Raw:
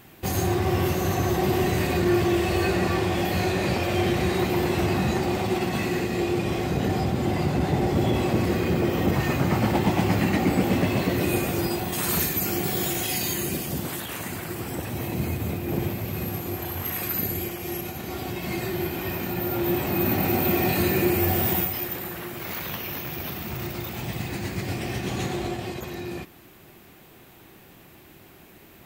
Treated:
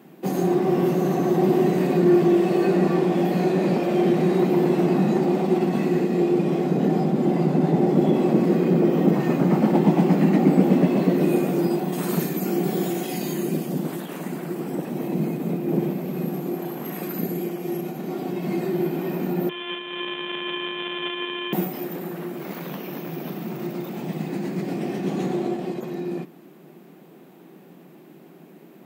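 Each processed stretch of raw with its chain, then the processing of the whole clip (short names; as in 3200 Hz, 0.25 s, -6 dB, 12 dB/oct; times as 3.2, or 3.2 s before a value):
19.49–21.53 sample sorter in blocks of 64 samples + HPF 490 Hz + inverted band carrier 3800 Hz
whole clip: elliptic high-pass 160 Hz, stop band 40 dB; tilt shelf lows +8 dB, about 910 Hz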